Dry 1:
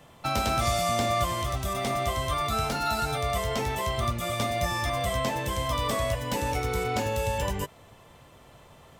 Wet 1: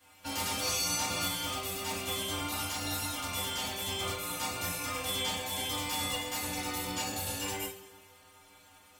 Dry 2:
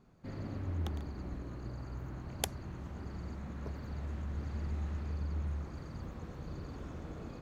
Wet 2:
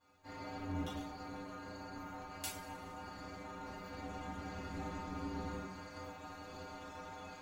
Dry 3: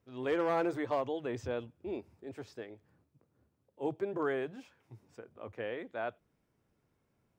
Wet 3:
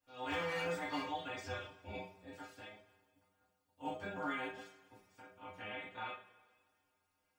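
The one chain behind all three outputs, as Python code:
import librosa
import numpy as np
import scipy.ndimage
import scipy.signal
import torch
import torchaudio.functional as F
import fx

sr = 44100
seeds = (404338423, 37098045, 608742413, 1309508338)

y = fx.spec_clip(x, sr, under_db=21)
y = fx.stiff_resonator(y, sr, f0_hz=92.0, decay_s=0.32, stiffness=0.008)
y = fx.rev_double_slope(y, sr, seeds[0], early_s=0.35, late_s=1.7, knee_db=-20, drr_db=-6.5)
y = y * 10.0 ** (-4.0 / 20.0)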